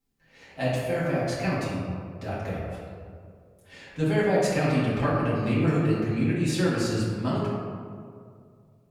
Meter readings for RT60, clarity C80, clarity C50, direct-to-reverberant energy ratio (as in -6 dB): 2.3 s, 0.5 dB, -1.5 dB, -9.0 dB